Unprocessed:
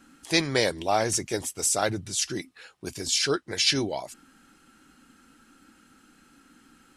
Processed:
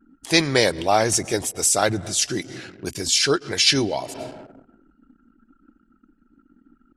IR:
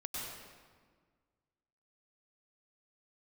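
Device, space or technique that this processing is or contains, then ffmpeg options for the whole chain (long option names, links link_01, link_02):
ducked reverb: -filter_complex "[0:a]asplit=3[link_01][link_02][link_03];[1:a]atrim=start_sample=2205[link_04];[link_02][link_04]afir=irnorm=-1:irlink=0[link_05];[link_03]apad=whole_len=307214[link_06];[link_05][link_06]sidechaincompress=threshold=-47dB:ratio=5:attack=12:release=117,volume=-6.5dB[link_07];[link_01][link_07]amix=inputs=2:normalize=0,anlmdn=0.0251,volume=5.5dB"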